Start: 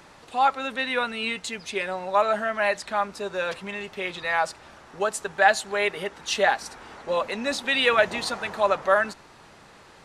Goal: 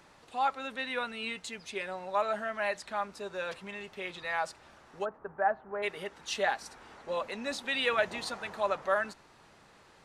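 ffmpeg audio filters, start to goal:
ffmpeg -i in.wav -filter_complex "[0:a]asplit=3[link_01][link_02][link_03];[link_01]afade=type=out:start_time=5.04:duration=0.02[link_04];[link_02]lowpass=frequency=1400:width=0.5412,lowpass=frequency=1400:width=1.3066,afade=type=in:start_time=5.04:duration=0.02,afade=type=out:start_time=5.82:duration=0.02[link_05];[link_03]afade=type=in:start_time=5.82:duration=0.02[link_06];[link_04][link_05][link_06]amix=inputs=3:normalize=0,volume=-8.5dB" out.wav

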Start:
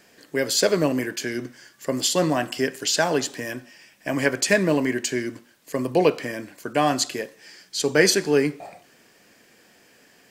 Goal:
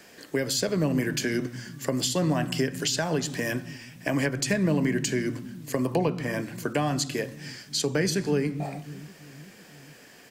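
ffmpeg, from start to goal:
ffmpeg -i in.wav -filter_complex "[0:a]asettb=1/sr,asplit=3[link_01][link_02][link_03];[link_01]atrim=end=5.864[link_04];[link_02]atrim=start=5.86:end=6.41,asetpts=PTS-STARTPTS,afade=type=in:duration=0.004:curve=qsin,afade=type=out:start_time=0.546:duration=0.004:curve=qsin,equalizer=frequency=930:width=1.4:gain=6.5[link_05];[link_03]atrim=start=6.406[link_06];[link_04][link_05]acrossfade=duration=0.004:curve1=hsin:curve2=qsin[link_07];[link_07][link_06]acrossfade=duration=0.004:curve1=qsin:curve2=hsin,acrossover=split=190[link_08][link_09];[link_08]aecho=1:1:130|312|566.8|923.5|1423:0.631|0.398|0.251|0.158|0.1[link_10];[link_09]acompressor=threshold=-29dB:ratio=8[link_11];[link_10][link_11]amix=inputs=2:normalize=0,volume=4dB" out.wav

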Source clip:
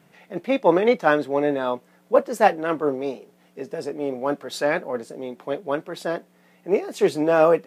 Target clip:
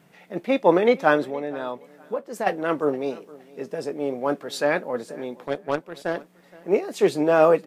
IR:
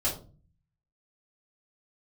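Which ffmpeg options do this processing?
-filter_complex "[0:a]asplit=3[link_01][link_02][link_03];[link_01]afade=type=out:start_time=1.29:duration=0.02[link_04];[link_02]acompressor=threshold=-26dB:ratio=6,afade=type=in:start_time=1.29:duration=0.02,afade=type=out:start_time=2.46:duration=0.02[link_05];[link_03]afade=type=in:start_time=2.46:duration=0.02[link_06];[link_04][link_05][link_06]amix=inputs=3:normalize=0,asettb=1/sr,asplit=3[link_07][link_08][link_09];[link_07]atrim=end=5.464[link_10];[link_08]atrim=start=5.46:end=6.16,asetpts=PTS-STARTPTS,afade=type=in:duration=0.004:curve=qsin,afade=type=out:start_time=0.696:duration=0.004:curve=qsin,aeval=exprs='0.266*(cos(1*acos(clip(val(0)/0.266,-1,1)))-cos(1*PI/2))+0.0211*(cos(7*acos(clip(val(0)/0.266,-1,1)))-cos(7*PI/2))':channel_layout=same[link_11];[link_09]atrim=start=6.156[link_12];[link_10][link_11]acrossfade=duration=0.004:curve1=hsin:curve2=qsin[link_13];[link_13][link_12]acrossfade=duration=0.004:curve1=qsin:curve2=hsin,aecho=1:1:468|936:0.0794|0.0191"

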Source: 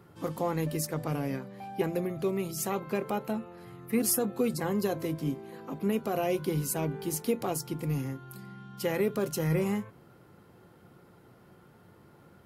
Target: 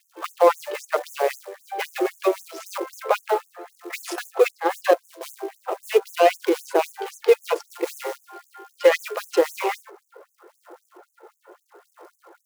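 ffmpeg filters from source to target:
ffmpeg -i in.wav -filter_complex "[0:a]asettb=1/sr,asplit=3[link_01][link_02][link_03];[link_01]atrim=end=4.484[link_04];[link_02]atrim=start=4.48:end=5.21,asetpts=PTS-STARTPTS,afade=type=in:duration=0.004:curve=qsin,afade=type=out:start_time=0.726:duration=0.004:curve=qsin,agate=range=-10dB:threshold=-29dB:ratio=16:detection=peak[link_05];[link_03]atrim=start=5.206[link_06];[link_04][link_05]acrossfade=duration=0.004:curve1=hsin:curve2=qsin[link_07];[link_07][link_06]acrossfade=duration=0.004:curve1=qsin:curve2=hsin,aphaser=in_gain=1:out_gain=1:delay=2.4:decay=0.41:speed=0.75:type=sinusoidal,acrossover=split=320|2400[link_08][link_09][link_10];[link_10]asoftclip=type=tanh:threshold=-26.5dB[link_11];[link_08][link_09][link_11]amix=inputs=3:normalize=0,adynamicsmooth=sensitivity=5.5:basefreq=1100,acrusher=bits=7:mode=log:mix=0:aa=0.000001,alimiter=level_in=19.5dB:limit=-1dB:release=50:level=0:latency=1,afftfilt=real='re*gte(b*sr/1024,310*pow(6300/310,0.5+0.5*sin(2*PI*3.8*pts/sr)))':imag='im*gte(b*sr/1024,310*pow(6300/310,0.5+0.5*sin(2*PI*3.8*pts/sr)))':win_size=1024:overlap=0.75,volume=-3dB" out.wav

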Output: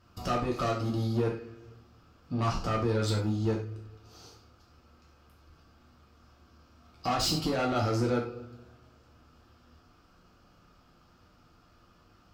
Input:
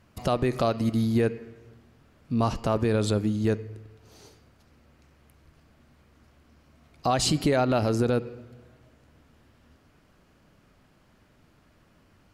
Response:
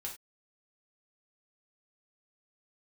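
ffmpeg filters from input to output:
-filter_complex "[0:a]equalizer=frequency=1250:width_type=o:width=0.33:gain=9,equalizer=frequency=2000:width_type=o:width=0.33:gain=-8,equalizer=frequency=5000:width_type=o:width=0.33:gain=8,equalizer=frequency=10000:width_type=o:width=0.33:gain=-12,asoftclip=type=tanh:threshold=-22dB[link_01];[1:a]atrim=start_sample=2205,asetrate=40131,aresample=44100[link_02];[link_01][link_02]afir=irnorm=-1:irlink=0"

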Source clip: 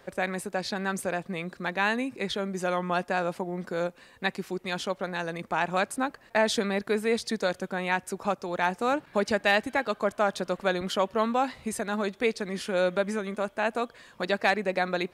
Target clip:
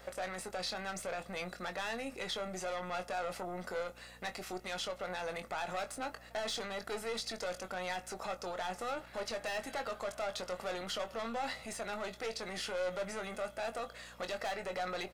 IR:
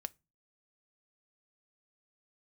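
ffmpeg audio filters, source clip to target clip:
-filter_complex "[0:a]aeval=exprs='(tanh(20*val(0)+0.45)-tanh(0.45))/20':channel_layout=same,aecho=1:1:1.5:0.4,alimiter=level_in=7dB:limit=-24dB:level=0:latency=1:release=37,volume=-7dB,bass=frequency=250:gain=-14,treble=frequency=4000:gain=3,aeval=exprs='val(0)+0.000891*(sin(2*PI*60*n/s)+sin(2*PI*2*60*n/s)/2+sin(2*PI*3*60*n/s)/3+sin(2*PI*4*60*n/s)/4+sin(2*PI*5*60*n/s)/5)':channel_layout=same,acrossover=split=6200[link_01][link_02];[link_02]acompressor=threshold=-51dB:ratio=4:attack=1:release=60[link_03];[link_01][link_03]amix=inputs=2:normalize=0,asplit=2[link_04][link_05];[1:a]atrim=start_sample=2205,adelay=22[link_06];[link_05][link_06]afir=irnorm=-1:irlink=0,volume=-6dB[link_07];[link_04][link_07]amix=inputs=2:normalize=0,volume=2dB"

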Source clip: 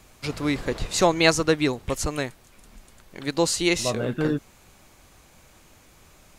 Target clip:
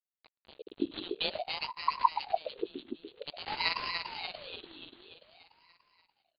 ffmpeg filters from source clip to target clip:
ffmpeg -i in.wav -af "afftfilt=real='re*(1-between(b*sr/4096,100,2900))':imag='im*(1-between(b*sr/4096,100,2900))':win_size=4096:overlap=0.75,dynaudnorm=framelen=240:gausssize=11:maxgain=11dB,aeval=exprs='(tanh(2.82*val(0)+0.4)-tanh(0.4))/2.82':channel_layout=same,aresample=8000,aeval=exprs='sgn(val(0))*max(abs(val(0))-0.015,0)':channel_layout=same,aresample=44100,aecho=1:1:291|582|873|1164|1455|1746|2037|2328:0.531|0.308|0.179|0.104|0.0601|0.0348|0.0202|0.0117,aeval=exprs='val(0)*sin(2*PI*670*n/s+670*0.55/0.51*sin(2*PI*0.51*n/s))':channel_layout=same" out.wav

